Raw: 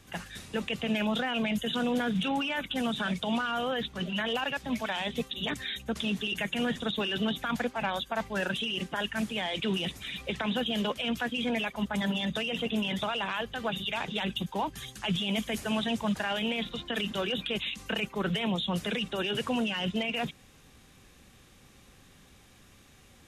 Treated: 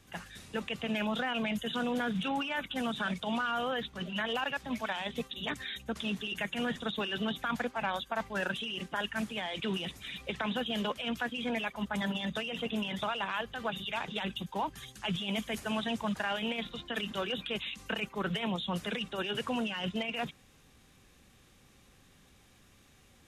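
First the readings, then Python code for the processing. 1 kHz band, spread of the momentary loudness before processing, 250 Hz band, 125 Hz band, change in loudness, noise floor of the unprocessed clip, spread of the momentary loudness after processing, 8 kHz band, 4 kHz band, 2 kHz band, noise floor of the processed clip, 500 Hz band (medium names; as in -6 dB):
-1.5 dB, 4 LU, -4.5 dB, -4.5 dB, -3.5 dB, -57 dBFS, 4 LU, -4.5 dB, -4.5 dB, -2.5 dB, -62 dBFS, -3.5 dB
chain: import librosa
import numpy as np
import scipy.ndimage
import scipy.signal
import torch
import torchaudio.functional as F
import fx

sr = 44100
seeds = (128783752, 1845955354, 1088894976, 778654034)

p1 = fx.dynamic_eq(x, sr, hz=1200.0, q=0.96, threshold_db=-43.0, ratio=4.0, max_db=4)
p2 = fx.level_steps(p1, sr, step_db=10)
p3 = p1 + (p2 * 10.0 ** (-3.0 / 20.0))
y = p3 * 10.0 ** (-8.0 / 20.0)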